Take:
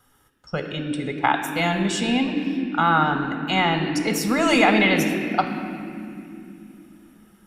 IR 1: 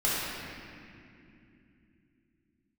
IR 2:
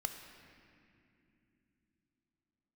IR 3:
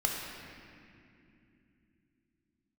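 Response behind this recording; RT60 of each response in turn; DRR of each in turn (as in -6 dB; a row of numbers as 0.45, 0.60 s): 2; 2.8 s, not exponential, 2.8 s; -9.5, 5.0, -1.5 dB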